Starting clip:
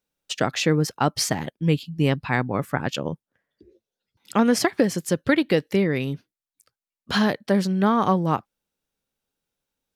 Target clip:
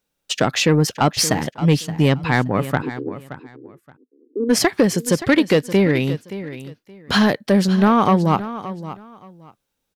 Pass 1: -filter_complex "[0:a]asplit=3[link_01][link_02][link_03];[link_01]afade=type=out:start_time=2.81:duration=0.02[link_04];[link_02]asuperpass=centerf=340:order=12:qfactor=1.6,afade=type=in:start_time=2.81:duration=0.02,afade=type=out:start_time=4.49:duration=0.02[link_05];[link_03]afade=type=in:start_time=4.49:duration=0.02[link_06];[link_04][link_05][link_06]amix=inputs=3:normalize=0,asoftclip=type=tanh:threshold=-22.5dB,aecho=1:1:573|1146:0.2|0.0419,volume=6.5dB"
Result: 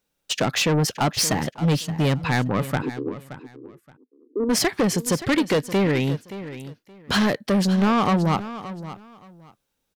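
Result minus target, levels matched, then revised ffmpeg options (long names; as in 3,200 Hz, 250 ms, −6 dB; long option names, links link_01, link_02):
soft clipping: distortion +9 dB
-filter_complex "[0:a]asplit=3[link_01][link_02][link_03];[link_01]afade=type=out:start_time=2.81:duration=0.02[link_04];[link_02]asuperpass=centerf=340:order=12:qfactor=1.6,afade=type=in:start_time=2.81:duration=0.02,afade=type=out:start_time=4.49:duration=0.02[link_05];[link_03]afade=type=in:start_time=4.49:duration=0.02[link_06];[link_04][link_05][link_06]amix=inputs=3:normalize=0,asoftclip=type=tanh:threshold=-13dB,aecho=1:1:573|1146:0.2|0.0419,volume=6.5dB"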